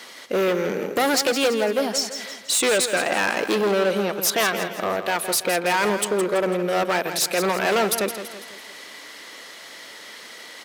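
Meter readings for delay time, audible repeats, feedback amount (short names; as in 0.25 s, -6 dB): 0.166 s, 4, 46%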